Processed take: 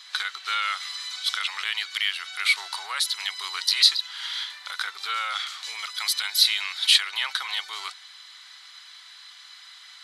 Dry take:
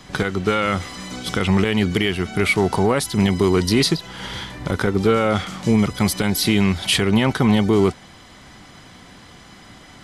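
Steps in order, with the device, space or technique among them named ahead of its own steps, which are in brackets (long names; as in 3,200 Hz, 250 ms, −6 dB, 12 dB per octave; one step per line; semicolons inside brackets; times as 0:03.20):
headphones lying on a table (high-pass filter 1,200 Hz 24 dB per octave; parametric band 4,000 Hz +12 dB 0.49 octaves)
level −3.5 dB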